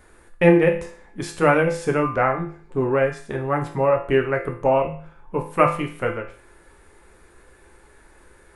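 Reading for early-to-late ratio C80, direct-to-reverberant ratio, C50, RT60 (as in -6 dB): 13.5 dB, 1.5 dB, 9.0 dB, 0.45 s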